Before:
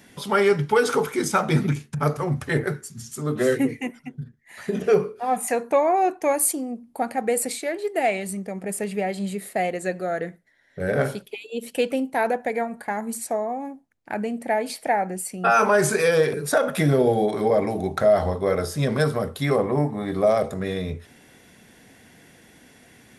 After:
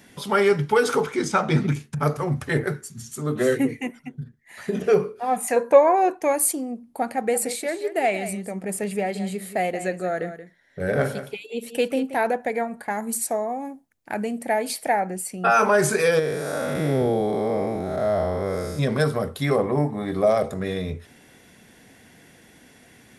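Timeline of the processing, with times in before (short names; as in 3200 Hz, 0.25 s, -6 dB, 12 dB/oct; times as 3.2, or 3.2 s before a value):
1.01–1.69 LPF 6800 Hz
2.87–4.18 notch 5100 Hz
5.56–6.15 small resonant body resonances 520/990/1600 Hz, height 12 dB
7.15–12.17 echo 0.178 s -12 dB
12.9–15 high shelf 6200 Hz +8.5 dB
16.19–18.79 time blur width 0.263 s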